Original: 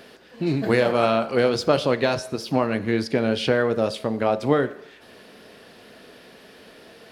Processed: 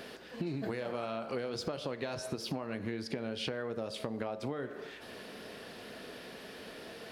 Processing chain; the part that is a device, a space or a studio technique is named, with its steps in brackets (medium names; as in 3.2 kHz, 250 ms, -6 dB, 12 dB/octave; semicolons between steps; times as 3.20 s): serial compression, peaks first (compression, threshold -27 dBFS, peak gain reduction 13.5 dB; compression 3:1, threshold -35 dBFS, peak gain reduction 8.5 dB)